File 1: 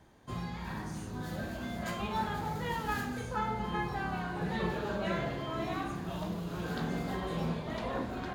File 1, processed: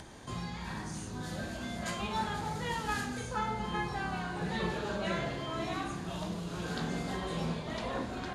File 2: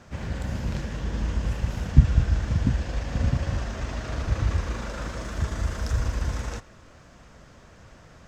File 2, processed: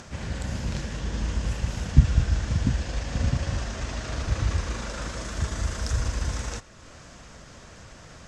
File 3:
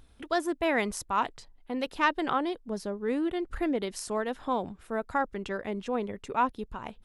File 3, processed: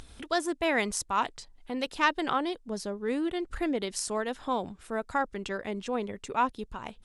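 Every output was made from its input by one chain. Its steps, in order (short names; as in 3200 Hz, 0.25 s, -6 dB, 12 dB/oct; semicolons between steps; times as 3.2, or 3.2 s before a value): LPF 10000 Hz 24 dB/oct; high shelf 3500 Hz +9 dB; upward compressor, threshold -38 dBFS; gain -1 dB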